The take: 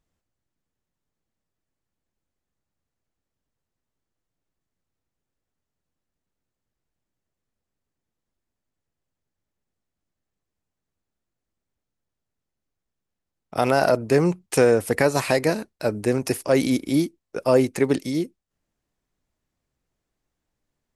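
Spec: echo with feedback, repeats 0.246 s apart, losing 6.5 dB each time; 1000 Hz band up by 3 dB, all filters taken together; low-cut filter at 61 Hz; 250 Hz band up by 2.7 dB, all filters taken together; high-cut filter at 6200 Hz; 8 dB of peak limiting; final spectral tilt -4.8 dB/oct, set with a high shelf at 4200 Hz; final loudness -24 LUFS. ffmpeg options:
-af "highpass=61,lowpass=6.2k,equalizer=f=250:t=o:g=3,equalizer=f=1k:t=o:g=4.5,highshelf=f=4.2k:g=-6,alimiter=limit=-11dB:level=0:latency=1,aecho=1:1:246|492|738|984|1230|1476:0.473|0.222|0.105|0.0491|0.0231|0.0109,volume=-1.5dB"

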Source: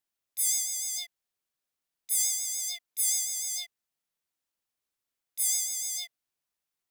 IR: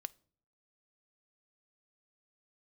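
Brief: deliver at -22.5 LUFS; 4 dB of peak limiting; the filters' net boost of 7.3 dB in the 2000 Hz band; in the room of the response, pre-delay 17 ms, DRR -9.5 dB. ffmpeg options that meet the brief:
-filter_complex "[0:a]equalizer=f=2k:t=o:g=7.5,alimiter=limit=-17.5dB:level=0:latency=1,asplit=2[a][b];[1:a]atrim=start_sample=2205,adelay=17[c];[b][c]afir=irnorm=-1:irlink=0,volume=13dB[d];[a][d]amix=inputs=2:normalize=0,volume=-3.5dB"

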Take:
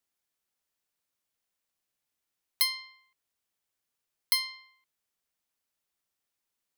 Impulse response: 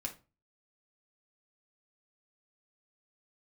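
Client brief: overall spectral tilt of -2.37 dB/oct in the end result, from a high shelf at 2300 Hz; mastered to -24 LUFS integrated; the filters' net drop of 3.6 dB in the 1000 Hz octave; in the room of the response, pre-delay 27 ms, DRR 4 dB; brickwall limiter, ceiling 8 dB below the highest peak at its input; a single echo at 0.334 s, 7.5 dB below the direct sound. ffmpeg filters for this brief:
-filter_complex "[0:a]equalizer=f=1k:t=o:g=-3,highshelf=f=2.3k:g=-4,alimiter=limit=-23dB:level=0:latency=1,aecho=1:1:334:0.422,asplit=2[a][b];[1:a]atrim=start_sample=2205,adelay=27[c];[b][c]afir=irnorm=-1:irlink=0,volume=-3.5dB[d];[a][d]amix=inputs=2:normalize=0,volume=11.5dB"

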